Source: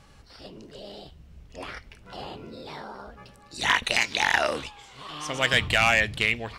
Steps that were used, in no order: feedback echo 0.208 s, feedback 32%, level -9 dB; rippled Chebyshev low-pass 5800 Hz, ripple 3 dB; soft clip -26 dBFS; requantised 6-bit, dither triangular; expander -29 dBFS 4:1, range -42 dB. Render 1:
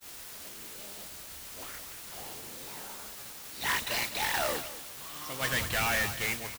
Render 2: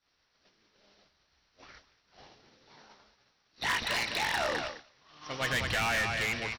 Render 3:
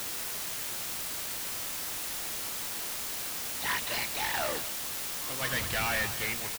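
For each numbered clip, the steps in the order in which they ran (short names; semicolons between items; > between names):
rippled Chebyshev low-pass > soft clip > feedback echo > requantised > expander; feedback echo > requantised > rippled Chebyshev low-pass > expander > soft clip; soft clip > feedback echo > expander > rippled Chebyshev low-pass > requantised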